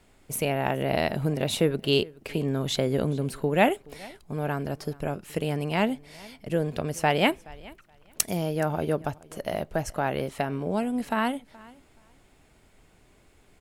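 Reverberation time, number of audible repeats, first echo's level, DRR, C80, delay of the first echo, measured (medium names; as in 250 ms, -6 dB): no reverb, 1, -23.0 dB, no reverb, no reverb, 424 ms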